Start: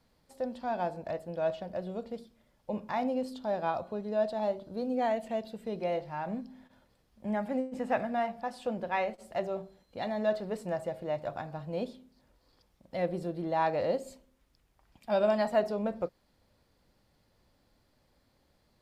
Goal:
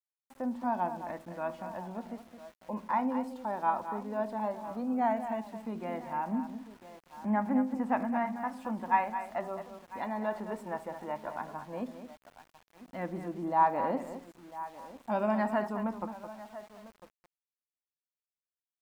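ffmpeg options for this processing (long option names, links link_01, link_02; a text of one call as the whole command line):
ffmpeg -i in.wav -filter_complex "[0:a]equalizer=frequency=125:width_type=o:width=1:gain=-11,equalizer=frequency=250:width_type=o:width=1:gain=12,equalizer=frequency=500:width_type=o:width=1:gain=-8,equalizer=frequency=1000:width_type=o:width=1:gain=11,equalizer=frequency=2000:width_type=o:width=1:gain=4,equalizer=frequency=4000:width_type=o:width=1:gain=-11,asplit=2[link_01][link_02];[link_02]aecho=0:1:999:0.141[link_03];[link_01][link_03]amix=inputs=2:normalize=0,aphaser=in_gain=1:out_gain=1:delay=2.2:decay=0.27:speed=0.14:type=sinusoidal,asplit=2[link_04][link_05];[link_05]aecho=0:1:216:0.316[link_06];[link_04][link_06]amix=inputs=2:normalize=0,adynamicequalizer=threshold=0.00708:dfrequency=910:dqfactor=5.3:tfrequency=910:tqfactor=5.3:attack=5:release=100:ratio=0.375:range=1.5:mode=boostabove:tftype=bell,aeval=exprs='val(0)*gte(abs(val(0)),0.00376)':channel_layout=same,volume=-5dB" out.wav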